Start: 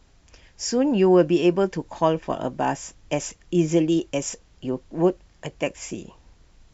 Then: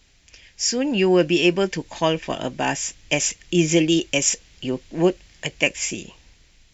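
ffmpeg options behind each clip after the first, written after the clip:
-af "dynaudnorm=f=380:g=5:m=7dB,highshelf=f=1.6k:t=q:w=1.5:g=9,volume=-3.5dB"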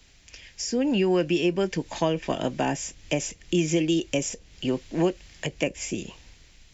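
-filter_complex "[0:a]acrossover=split=120|710[a][b][c];[a]acompressor=threshold=-43dB:ratio=4[d];[b]acompressor=threshold=-23dB:ratio=4[e];[c]acompressor=threshold=-34dB:ratio=4[f];[d][e][f]amix=inputs=3:normalize=0,volume=1.5dB"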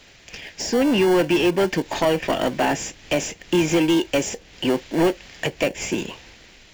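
-filter_complex "[0:a]asplit=2[a][b];[b]highpass=f=720:p=1,volume=19dB,asoftclip=type=tanh:threshold=-10.5dB[c];[a][c]amix=inputs=2:normalize=0,lowpass=f=2.3k:p=1,volume=-6dB,asplit=2[d][e];[e]acrusher=samples=35:mix=1:aa=0.000001,volume=-8.5dB[f];[d][f]amix=inputs=2:normalize=0"

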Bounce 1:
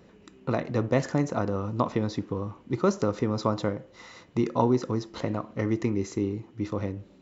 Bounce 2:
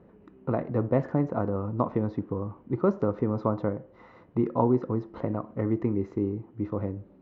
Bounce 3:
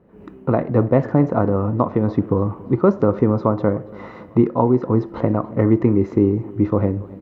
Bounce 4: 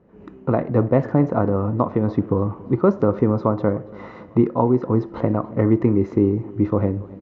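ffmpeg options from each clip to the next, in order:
-af "lowpass=1.2k"
-af "dynaudnorm=f=100:g=3:m=15dB,aecho=1:1:283|566|849|1132:0.0891|0.049|0.027|0.0148,volume=-1dB"
-af "aresample=16000,aresample=44100,volume=-1.5dB"

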